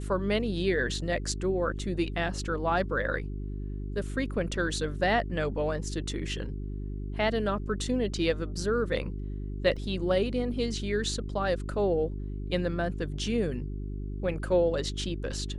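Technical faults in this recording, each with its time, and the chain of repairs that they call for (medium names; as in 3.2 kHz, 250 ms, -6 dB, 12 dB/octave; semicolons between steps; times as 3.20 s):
hum 50 Hz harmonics 8 -35 dBFS
9.76–9.77 s: dropout 5.6 ms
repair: de-hum 50 Hz, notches 8; interpolate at 9.76 s, 5.6 ms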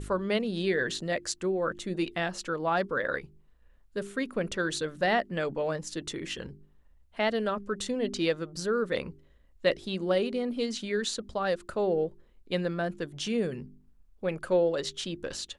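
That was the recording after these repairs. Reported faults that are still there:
nothing left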